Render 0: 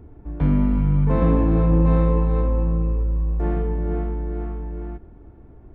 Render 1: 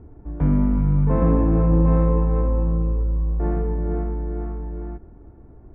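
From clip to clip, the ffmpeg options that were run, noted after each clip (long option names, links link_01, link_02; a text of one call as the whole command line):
ffmpeg -i in.wav -af "lowpass=1700" out.wav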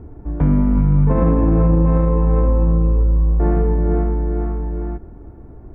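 ffmpeg -i in.wav -af "alimiter=limit=-14dB:level=0:latency=1:release=70,volume=7dB" out.wav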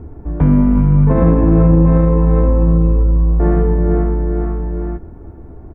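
ffmpeg -i in.wav -filter_complex "[0:a]asplit=2[link_01][link_02];[link_02]adelay=12,volume=-10.5dB[link_03];[link_01][link_03]amix=inputs=2:normalize=0,volume=3.5dB" out.wav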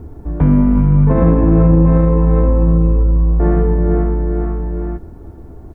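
ffmpeg -i in.wav -af "acrusher=bits=10:mix=0:aa=0.000001" out.wav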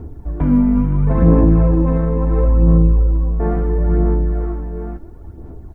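ffmpeg -i in.wav -af "aphaser=in_gain=1:out_gain=1:delay=4.5:decay=0.47:speed=0.73:type=sinusoidal,volume=-4.5dB" out.wav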